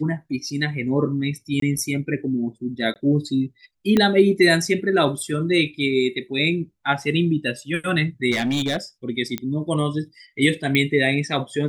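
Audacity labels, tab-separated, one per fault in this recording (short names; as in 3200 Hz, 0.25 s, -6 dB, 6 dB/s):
1.600000	1.620000	gap 23 ms
2.940000	2.960000	gap 18 ms
3.970000	3.970000	pop -7 dBFS
8.320000	8.760000	clipped -18 dBFS
9.380000	9.380000	pop -11 dBFS
10.750000	10.750000	pop -8 dBFS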